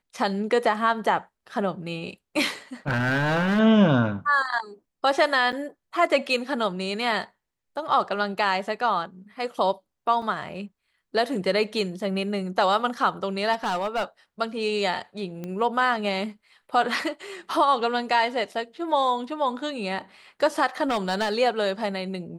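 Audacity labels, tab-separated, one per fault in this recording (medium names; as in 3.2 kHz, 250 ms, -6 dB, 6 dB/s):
2.880000	3.600000	clipped -19.5 dBFS
5.520000	5.530000	dropout 8 ms
10.220000	10.220000	dropout 2.9 ms
13.520000	14.040000	clipped -21.5 dBFS
15.440000	15.440000	pop -21 dBFS
20.880000	21.340000	clipped -20 dBFS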